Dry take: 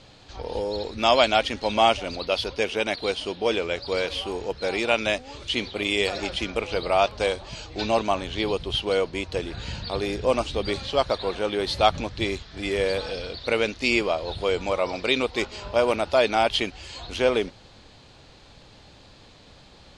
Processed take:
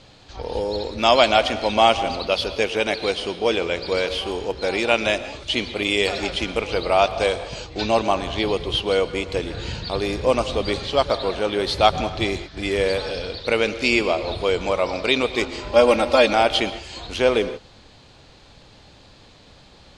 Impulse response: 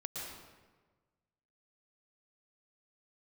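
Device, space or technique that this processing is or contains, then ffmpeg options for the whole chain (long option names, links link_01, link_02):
keyed gated reverb: -filter_complex "[0:a]asettb=1/sr,asplit=3[link_01][link_02][link_03];[link_01]atrim=end=15.714[link_04];[link_02]atrim=start=15.71:end=16.33,asetpts=PTS-STARTPTS,afade=type=in:duration=0.004:curve=qsin,afade=type=out:start_time=0.616:duration=0.004:curve=qsin,aecho=1:1:3.7:0.98,atrim=end_sample=27342[link_05];[link_03]atrim=start=16.326[link_06];[link_04][link_05]acrossfade=duration=0.004:curve1=hsin:curve2=qsin[link_07];[link_07][link_06]acrossfade=duration=0.004:curve1=qsin:curve2=hsin,asplit=3[link_08][link_09][link_10];[1:a]atrim=start_sample=2205[link_11];[link_09][link_11]afir=irnorm=-1:irlink=0[link_12];[link_10]apad=whole_len=880824[link_13];[link_12][link_13]sidechaingate=range=-33dB:threshold=-38dB:ratio=16:detection=peak,volume=-9dB[link_14];[link_08][link_14]amix=inputs=2:normalize=0,volume=1.5dB"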